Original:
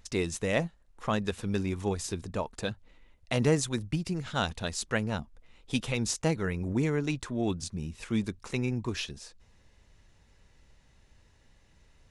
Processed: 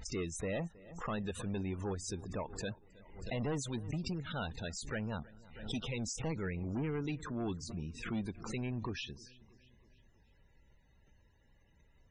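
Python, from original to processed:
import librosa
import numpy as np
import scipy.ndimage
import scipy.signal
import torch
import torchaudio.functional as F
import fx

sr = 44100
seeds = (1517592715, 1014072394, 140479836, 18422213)

y = fx.diode_clip(x, sr, knee_db=-13.5)
y = np.clip(10.0 ** (27.0 / 20.0) * y, -1.0, 1.0) / 10.0 ** (27.0 / 20.0)
y = fx.echo_feedback(y, sr, ms=319, feedback_pct=55, wet_db=-21.5)
y = fx.spec_topn(y, sr, count=64)
y = fx.pre_swell(y, sr, db_per_s=80.0)
y = y * librosa.db_to_amplitude(-5.5)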